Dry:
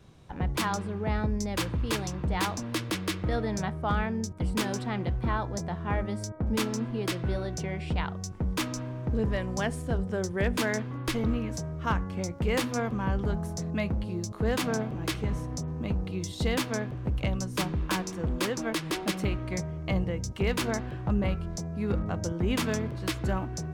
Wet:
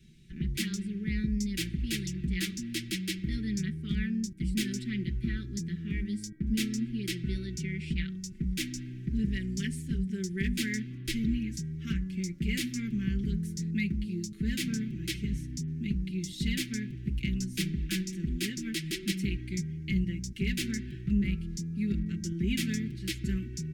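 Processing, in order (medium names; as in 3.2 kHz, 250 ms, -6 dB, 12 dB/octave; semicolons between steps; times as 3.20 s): Chebyshev band-stop 310–2000 Hz, order 3; comb 5.2 ms, depth 83%; trim -2.5 dB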